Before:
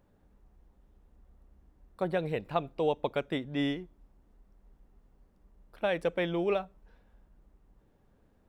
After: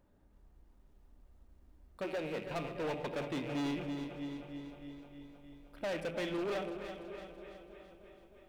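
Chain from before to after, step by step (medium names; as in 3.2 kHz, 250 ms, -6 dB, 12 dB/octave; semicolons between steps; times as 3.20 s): rattle on loud lows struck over -47 dBFS, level -36 dBFS; 2.03–2.44 s: high-pass 270 Hz -> 130 Hz 24 dB/octave; multi-head delay 310 ms, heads first and second, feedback 58%, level -21 dB; on a send at -10 dB: reverberation RT60 0.95 s, pre-delay 3 ms; on the sum: hard clipper -30.5 dBFS, distortion -7 dB; bit-crushed delay 331 ms, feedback 55%, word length 12-bit, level -9 dB; trim -3 dB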